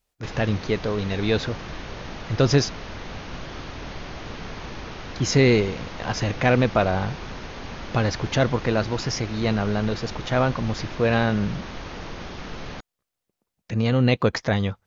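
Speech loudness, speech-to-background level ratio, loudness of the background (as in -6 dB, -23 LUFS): -23.5 LUFS, 13.0 dB, -36.5 LUFS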